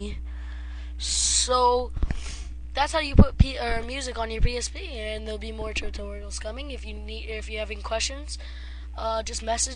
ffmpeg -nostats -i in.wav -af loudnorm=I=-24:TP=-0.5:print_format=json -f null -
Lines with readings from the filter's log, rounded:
"input_i" : "-27.6",
"input_tp" : "-3.2",
"input_lra" : "9.4",
"input_thresh" : "-37.9",